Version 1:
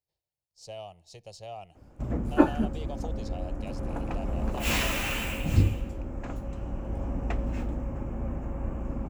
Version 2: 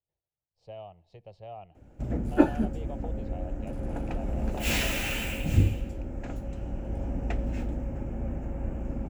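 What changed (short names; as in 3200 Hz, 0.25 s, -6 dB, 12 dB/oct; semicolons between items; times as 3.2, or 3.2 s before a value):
speech: add air absorption 500 m; background: add bell 1100 Hz -12 dB 0.34 oct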